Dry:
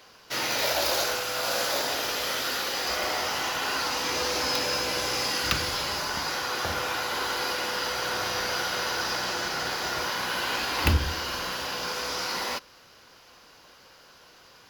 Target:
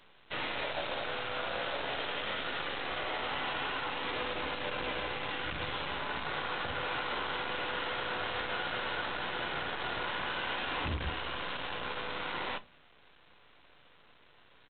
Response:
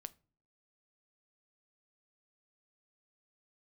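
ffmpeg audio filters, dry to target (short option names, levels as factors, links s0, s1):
-filter_complex "[0:a]alimiter=limit=0.112:level=0:latency=1:release=114,aresample=8000,acrusher=bits=6:dc=4:mix=0:aa=0.000001,aresample=44100[s0];[1:a]atrim=start_sample=2205[s1];[s0][s1]afir=irnorm=-1:irlink=0"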